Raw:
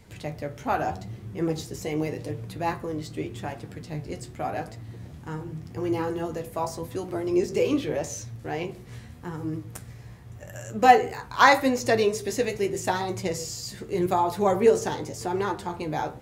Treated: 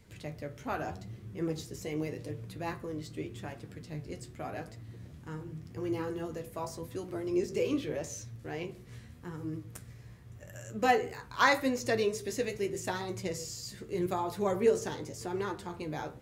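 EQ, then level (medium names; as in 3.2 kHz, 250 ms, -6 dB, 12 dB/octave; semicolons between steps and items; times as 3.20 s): peaking EQ 800 Hz -6 dB 0.55 oct; -6.5 dB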